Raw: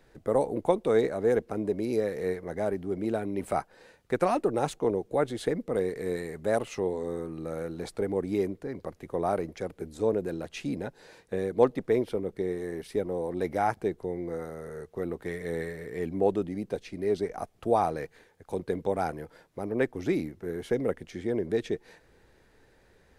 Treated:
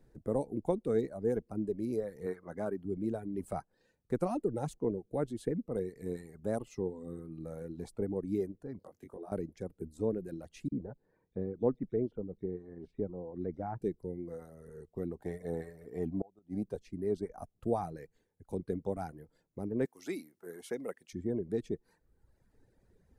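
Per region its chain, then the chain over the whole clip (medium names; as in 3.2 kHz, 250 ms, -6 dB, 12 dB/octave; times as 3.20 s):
2.26–2.85 s: high-pass 150 Hz 6 dB/octave + peaking EQ 1.3 kHz +10 dB 1.1 oct
8.79–9.32 s: high-pass 260 Hz 6 dB/octave + compression 8:1, threshold -36 dBFS + doubling 21 ms -2 dB
10.68–13.82 s: tape spacing loss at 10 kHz 37 dB + bands offset in time highs, lows 40 ms, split 3.1 kHz
15.19–16.63 s: peaking EQ 730 Hz +12 dB 0.74 oct + inverted gate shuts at -15 dBFS, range -26 dB
19.85–21.13 s: high-pass 200 Hz + tilt shelf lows -10 dB, about 670 Hz
whole clip: reverb removal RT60 1.2 s; FFT filter 220 Hz 0 dB, 600 Hz -9 dB, 2.9 kHz -17 dB, 8.6 kHz -8 dB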